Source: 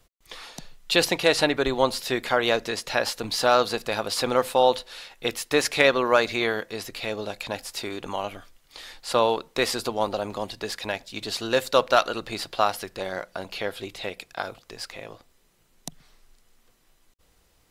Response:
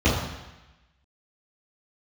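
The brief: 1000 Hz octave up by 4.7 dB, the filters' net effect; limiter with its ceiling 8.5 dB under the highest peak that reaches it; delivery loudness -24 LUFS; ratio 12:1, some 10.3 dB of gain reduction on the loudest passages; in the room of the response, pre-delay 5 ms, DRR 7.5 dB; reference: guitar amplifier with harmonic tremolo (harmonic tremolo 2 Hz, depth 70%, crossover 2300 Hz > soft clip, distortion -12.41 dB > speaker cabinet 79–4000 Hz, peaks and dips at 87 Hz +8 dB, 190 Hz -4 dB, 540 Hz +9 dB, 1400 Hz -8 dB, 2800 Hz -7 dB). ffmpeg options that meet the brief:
-filter_complex "[0:a]equalizer=f=1k:t=o:g=7,acompressor=threshold=-20dB:ratio=12,alimiter=limit=-15dB:level=0:latency=1,asplit=2[a][b];[1:a]atrim=start_sample=2205,adelay=5[c];[b][c]afir=irnorm=-1:irlink=0,volume=-25.5dB[d];[a][d]amix=inputs=2:normalize=0,acrossover=split=2300[e][f];[e]aeval=exprs='val(0)*(1-0.7/2+0.7/2*cos(2*PI*2*n/s))':c=same[g];[f]aeval=exprs='val(0)*(1-0.7/2-0.7/2*cos(2*PI*2*n/s))':c=same[h];[g][h]amix=inputs=2:normalize=0,asoftclip=threshold=-24.5dB,highpass=79,equalizer=f=87:t=q:w=4:g=8,equalizer=f=190:t=q:w=4:g=-4,equalizer=f=540:t=q:w=4:g=9,equalizer=f=1.4k:t=q:w=4:g=-8,equalizer=f=2.8k:t=q:w=4:g=-7,lowpass=f=4k:w=0.5412,lowpass=f=4k:w=1.3066,volume=8dB"

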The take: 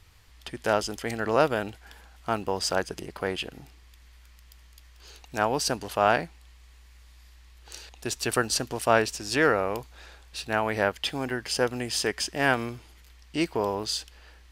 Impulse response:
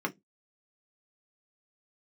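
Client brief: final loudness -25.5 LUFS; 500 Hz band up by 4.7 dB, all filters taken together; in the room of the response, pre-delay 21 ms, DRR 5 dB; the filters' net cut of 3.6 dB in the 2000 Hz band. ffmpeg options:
-filter_complex "[0:a]equalizer=f=500:t=o:g=6,equalizer=f=2k:t=o:g=-5.5,asplit=2[a][b];[1:a]atrim=start_sample=2205,adelay=21[c];[b][c]afir=irnorm=-1:irlink=0,volume=-11.5dB[d];[a][d]amix=inputs=2:normalize=0,volume=-1.5dB"

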